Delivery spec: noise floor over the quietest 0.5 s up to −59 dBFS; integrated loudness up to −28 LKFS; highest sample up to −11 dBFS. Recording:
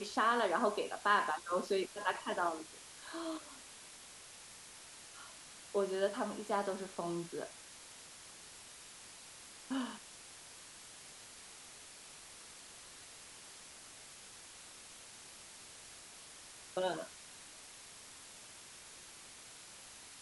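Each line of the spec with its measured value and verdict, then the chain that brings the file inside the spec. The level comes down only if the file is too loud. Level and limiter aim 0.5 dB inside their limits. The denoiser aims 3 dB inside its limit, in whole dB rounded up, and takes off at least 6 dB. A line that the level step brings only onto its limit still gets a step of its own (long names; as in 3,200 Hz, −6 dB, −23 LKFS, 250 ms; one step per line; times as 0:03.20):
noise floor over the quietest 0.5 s −54 dBFS: out of spec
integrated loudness −40.0 LKFS: in spec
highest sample −17.5 dBFS: in spec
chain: broadband denoise 8 dB, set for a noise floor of −54 dBFS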